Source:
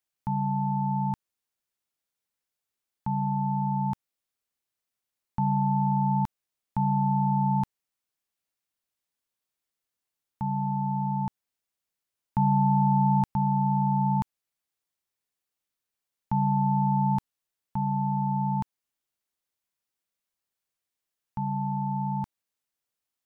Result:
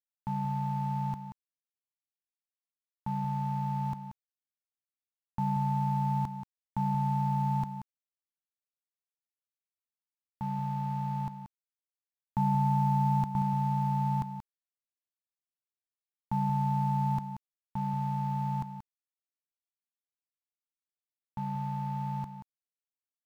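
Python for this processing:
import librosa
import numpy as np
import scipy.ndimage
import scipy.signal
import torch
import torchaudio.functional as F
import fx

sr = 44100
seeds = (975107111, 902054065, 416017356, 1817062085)

p1 = fx.law_mismatch(x, sr, coded='A')
p2 = p1 + fx.echo_single(p1, sr, ms=181, db=-10.0, dry=0)
y = p2 * 10.0 ** (-4.0 / 20.0)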